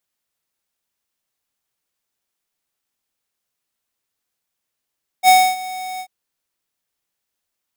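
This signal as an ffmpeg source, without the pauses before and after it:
-f lavfi -i "aevalsrc='0.376*(2*lt(mod(744*t,1),0.5)-1)':d=0.84:s=44100,afade=t=in:d=0.054,afade=t=out:st=0.054:d=0.273:silence=0.106,afade=t=out:st=0.77:d=0.07"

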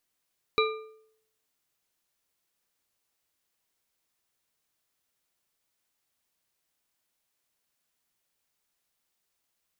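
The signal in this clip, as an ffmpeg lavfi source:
-f lavfi -i "aevalsrc='0.0841*pow(10,-3*t/0.7)*sin(2*PI*438*t)+0.0708*pow(10,-3*t/0.516)*sin(2*PI*1207.6*t)+0.0596*pow(10,-3*t/0.422)*sin(2*PI*2367*t)+0.0501*pow(10,-3*t/0.363)*sin(2*PI*3912.7*t)':d=1.55:s=44100"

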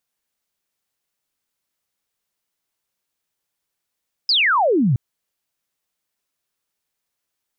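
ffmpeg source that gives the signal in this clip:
-f lavfi -i "aevalsrc='0.211*clip(t/0.002,0,1)*clip((0.67-t)/0.002,0,1)*sin(2*PI*5200*0.67/log(110/5200)*(exp(log(110/5200)*t/0.67)-1))':d=0.67:s=44100"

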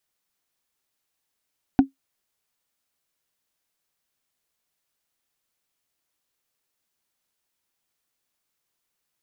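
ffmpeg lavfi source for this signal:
-f lavfi -i "aevalsrc='0.473*pow(10,-3*t/0.13)*sin(2*PI*271*t)+0.168*pow(10,-3*t/0.038)*sin(2*PI*747.1*t)+0.0596*pow(10,-3*t/0.017)*sin(2*PI*1464.5*t)+0.0211*pow(10,-3*t/0.009)*sin(2*PI*2420.8*t)+0.0075*pow(10,-3*t/0.006)*sin(2*PI*3615.1*t)':d=0.45:s=44100"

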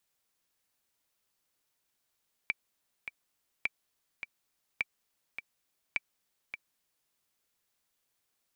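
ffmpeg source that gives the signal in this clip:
-f lavfi -i "aevalsrc='pow(10,(-16-9.5*gte(mod(t,2*60/104),60/104))/20)*sin(2*PI*2330*mod(t,60/104))*exp(-6.91*mod(t,60/104)/0.03)':d=4.61:s=44100"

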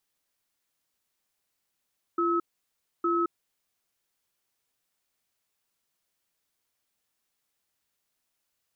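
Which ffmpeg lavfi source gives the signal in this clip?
-f lavfi -i "aevalsrc='0.0531*(sin(2*PI*342*t)+sin(2*PI*1290*t))*clip(min(mod(t,0.86),0.22-mod(t,0.86))/0.005,0,1)':d=1.53:s=44100"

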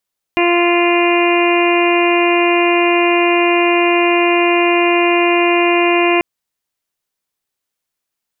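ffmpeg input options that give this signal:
-f lavfi -i "aevalsrc='0.224*sin(2*PI*347*t)+0.133*sin(2*PI*694*t)+0.106*sin(2*PI*1041*t)+0.0251*sin(2*PI*1388*t)+0.0447*sin(2*PI*1735*t)+0.0794*sin(2*PI*2082*t)+0.112*sin(2*PI*2429*t)+0.0891*sin(2*PI*2776*t)':d=5.84:s=44100"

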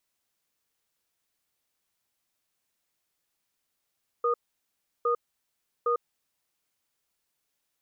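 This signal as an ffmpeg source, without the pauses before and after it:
-f lavfi -i "aevalsrc='0.0562*(sin(2*PI*475*t)+sin(2*PI*1230*t))*clip(min(mod(t,0.81),0.1-mod(t,0.81))/0.005,0,1)':d=1.97:s=44100"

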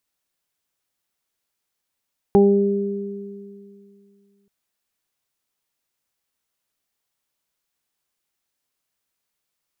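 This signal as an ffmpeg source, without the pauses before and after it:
-f lavfi -i "aevalsrc='0.211*pow(10,-3*t/2.59)*sin(2*PI*200*t)+0.299*pow(10,-3*t/2.27)*sin(2*PI*400*t)+0.0299*pow(10,-3*t/1.15)*sin(2*PI*600*t)+0.119*pow(10,-3*t/0.38)*sin(2*PI*800*t)':d=2.13:s=44100"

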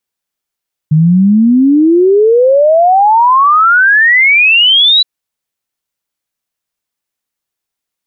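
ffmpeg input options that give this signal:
-f lavfi -i "aevalsrc='0.631*clip(min(t,4.12-t)/0.01,0,1)*sin(2*PI*150*4.12/log(4000/150)*(exp(log(4000/150)*t/4.12)-1))':d=4.12:s=44100"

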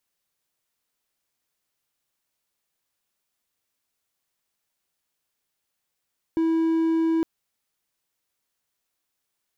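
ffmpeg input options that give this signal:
-f lavfi -i "aevalsrc='0.141*(1-4*abs(mod(326*t+0.25,1)-0.5))':d=0.86:s=44100"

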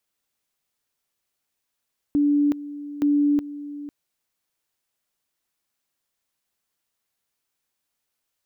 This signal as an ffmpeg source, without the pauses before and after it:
-f lavfi -i "aevalsrc='pow(10,(-16-15.5*gte(mod(t,0.87),0.37))/20)*sin(2*PI*290*t)':d=1.74:s=44100"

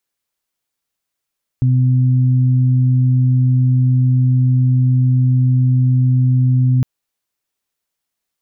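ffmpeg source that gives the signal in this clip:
-f lavfi -i "aevalsrc='0.316*sin(2*PI*127*t)+0.0794*sin(2*PI*254*t)':d=5.21:s=44100"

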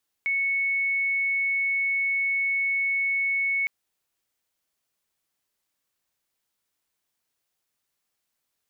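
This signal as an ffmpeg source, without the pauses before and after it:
-f lavfi -i "aevalsrc='0.0794*sin(2*PI*2210*t)':d=3.41:s=44100"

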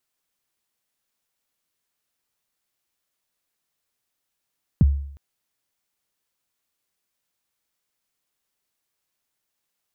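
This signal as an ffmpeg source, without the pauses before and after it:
-f lavfi -i "aevalsrc='0.355*pow(10,-3*t/0.65)*sin(2*PI*(220*0.026/log(70/220)*(exp(log(70/220)*min(t,0.026)/0.026)-1)+70*max(t-0.026,0)))':d=0.36:s=44100"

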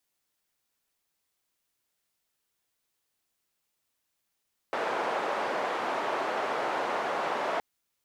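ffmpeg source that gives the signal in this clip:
-f lavfi -i "anoisesrc=c=white:d=2.87:r=44100:seed=1,highpass=f=530,lowpass=f=850,volume=-8.5dB"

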